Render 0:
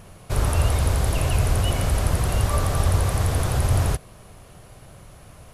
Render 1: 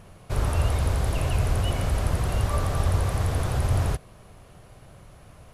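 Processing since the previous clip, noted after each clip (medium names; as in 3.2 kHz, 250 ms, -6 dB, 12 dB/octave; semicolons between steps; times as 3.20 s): treble shelf 5.3 kHz -6 dB; trim -3 dB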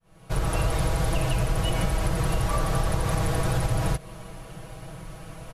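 fade-in on the opening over 0.70 s; comb 6.2 ms, depth 85%; compression, threshold -27 dBFS, peak gain reduction 9.5 dB; trim +6.5 dB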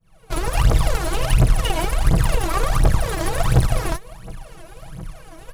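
Chebyshev shaper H 2 -7 dB, 7 -27 dB, 8 -19 dB, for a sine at -11.5 dBFS; phaser 1.4 Hz, delay 3.2 ms, feedback 79%; hard clipper -5.5 dBFS, distortion -21 dB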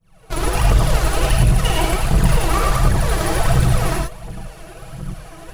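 in parallel at -0.5 dB: compressor with a negative ratio -17 dBFS; on the sum: gated-style reverb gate 130 ms rising, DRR -0.5 dB; trim -5.5 dB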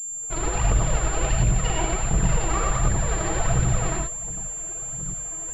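class-D stage that switches slowly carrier 7.3 kHz; trim -6.5 dB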